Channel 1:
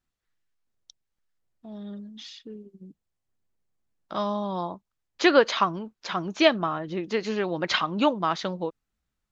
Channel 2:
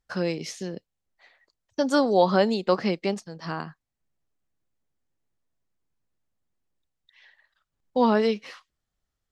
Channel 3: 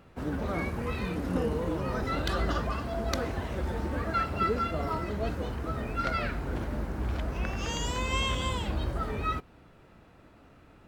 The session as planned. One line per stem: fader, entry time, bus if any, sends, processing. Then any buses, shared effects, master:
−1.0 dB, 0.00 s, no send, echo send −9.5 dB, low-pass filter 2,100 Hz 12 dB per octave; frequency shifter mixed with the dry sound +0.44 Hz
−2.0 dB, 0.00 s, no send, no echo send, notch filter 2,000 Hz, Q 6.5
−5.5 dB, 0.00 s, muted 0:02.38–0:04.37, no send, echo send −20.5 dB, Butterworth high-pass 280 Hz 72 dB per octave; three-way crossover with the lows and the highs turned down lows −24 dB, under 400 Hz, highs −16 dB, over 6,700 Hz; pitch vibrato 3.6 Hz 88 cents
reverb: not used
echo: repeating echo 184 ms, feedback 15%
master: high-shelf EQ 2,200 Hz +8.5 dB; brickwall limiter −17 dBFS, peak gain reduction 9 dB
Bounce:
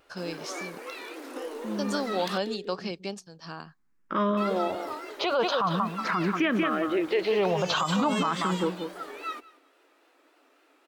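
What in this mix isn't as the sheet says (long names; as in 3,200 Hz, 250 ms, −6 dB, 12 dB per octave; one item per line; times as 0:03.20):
stem 1 −1.0 dB → +7.5 dB
stem 2 −2.0 dB → −9.5 dB
stem 3: missing three-way crossover with the lows and the highs turned down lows −24 dB, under 400 Hz, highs −16 dB, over 6,700 Hz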